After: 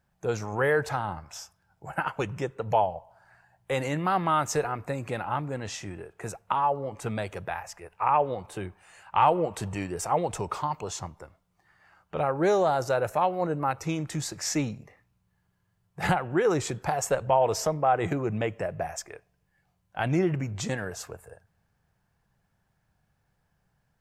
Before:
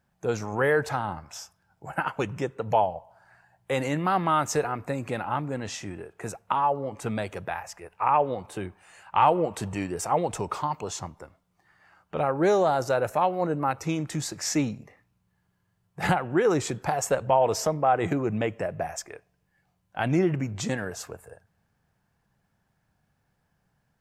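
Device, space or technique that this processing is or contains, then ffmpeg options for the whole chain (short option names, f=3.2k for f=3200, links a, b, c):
low shelf boost with a cut just above: -af "lowshelf=f=63:g=6,equalizer=f=250:t=o:w=0.62:g=-4,volume=-1dB"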